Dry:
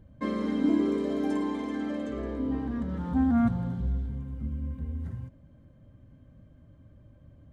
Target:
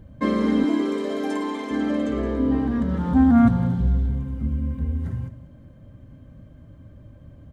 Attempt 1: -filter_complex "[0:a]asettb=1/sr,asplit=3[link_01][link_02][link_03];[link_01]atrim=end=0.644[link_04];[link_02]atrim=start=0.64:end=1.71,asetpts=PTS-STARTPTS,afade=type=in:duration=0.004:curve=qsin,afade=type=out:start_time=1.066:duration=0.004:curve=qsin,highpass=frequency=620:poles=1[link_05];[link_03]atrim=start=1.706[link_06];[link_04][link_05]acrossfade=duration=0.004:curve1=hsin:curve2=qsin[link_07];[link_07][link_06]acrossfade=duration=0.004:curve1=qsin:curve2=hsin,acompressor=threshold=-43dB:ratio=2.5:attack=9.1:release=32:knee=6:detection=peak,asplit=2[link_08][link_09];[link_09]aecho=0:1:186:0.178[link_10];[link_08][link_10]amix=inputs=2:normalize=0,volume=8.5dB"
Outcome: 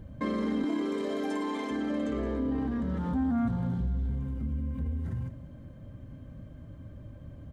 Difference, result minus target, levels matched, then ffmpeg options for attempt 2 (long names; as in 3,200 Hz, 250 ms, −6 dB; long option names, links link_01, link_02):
downward compressor: peak gain reduction +14 dB
-filter_complex "[0:a]asettb=1/sr,asplit=3[link_01][link_02][link_03];[link_01]atrim=end=0.644[link_04];[link_02]atrim=start=0.64:end=1.71,asetpts=PTS-STARTPTS,afade=type=in:duration=0.004:curve=qsin,afade=type=out:start_time=1.066:duration=0.004:curve=qsin,highpass=frequency=620:poles=1[link_05];[link_03]atrim=start=1.706[link_06];[link_04][link_05]acrossfade=duration=0.004:curve1=hsin:curve2=qsin[link_07];[link_07][link_06]acrossfade=duration=0.004:curve1=qsin:curve2=hsin,asplit=2[link_08][link_09];[link_09]aecho=0:1:186:0.178[link_10];[link_08][link_10]amix=inputs=2:normalize=0,volume=8.5dB"